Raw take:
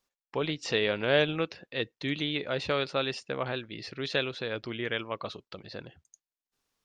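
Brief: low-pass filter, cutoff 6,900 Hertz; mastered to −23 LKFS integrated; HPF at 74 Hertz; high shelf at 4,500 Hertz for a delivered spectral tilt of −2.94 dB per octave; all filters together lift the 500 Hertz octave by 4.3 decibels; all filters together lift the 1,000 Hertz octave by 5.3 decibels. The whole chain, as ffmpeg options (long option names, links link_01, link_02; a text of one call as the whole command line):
ffmpeg -i in.wav -af "highpass=74,lowpass=6900,equalizer=frequency=500:width_type=o:gain=3.5,equalizer=frequency=1000:width_type=o:gain=6.5,highshelf=frequency=4500:gain=-5,volume=5.5dB" out.wav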